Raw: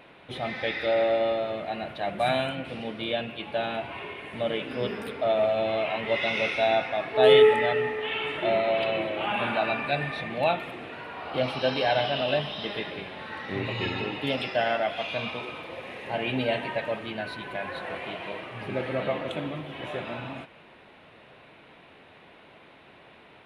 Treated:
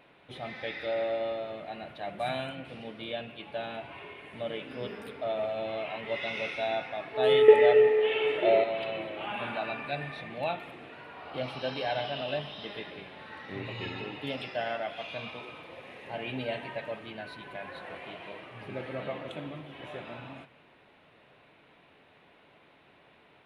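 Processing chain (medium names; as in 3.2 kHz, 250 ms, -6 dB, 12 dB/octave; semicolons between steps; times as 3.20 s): 7.48–8.64 s: FFT filter 240 Hz 0 dB, 440 Hz +15 dB, 1.1 kHz +1 dB, 2.4 kHz +6 dB, 7.7 kHz +1 dB; reverberation RT60 0.90 s, pre-delay 7 ms, DRR 18.5 dB; trim -7.5 dB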